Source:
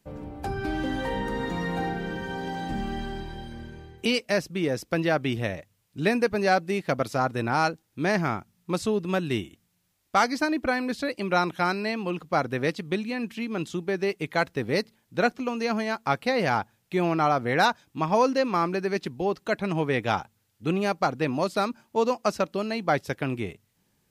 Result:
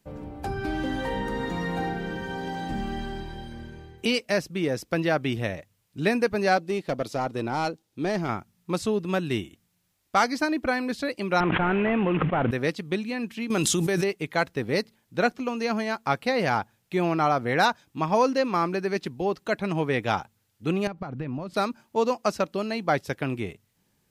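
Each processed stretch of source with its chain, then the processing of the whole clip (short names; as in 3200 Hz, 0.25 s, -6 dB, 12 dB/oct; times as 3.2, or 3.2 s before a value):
6.57–8.29 EQ curve 370 Hz 0 dB, 1700 Hz -13 dB, 3700 Hz -6 dB + overdrive pedal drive 12 dB, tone 5800 Hz, clips at -15.5 dBFS + hard clip -19.5 dBFS
11.4–12.51 CVSD 16 kbps + air absorption 180 m + fast leveller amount 100%
13.5–14.04 bell 9300 Hz +14 dB 1.8 oct + notch 4500 Hz, Q 29 + fast leveller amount 100%
20.87–21.54 compressor, threshold -33 dBFS + tone controls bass +10 dB, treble -14 dB
whole clip: dry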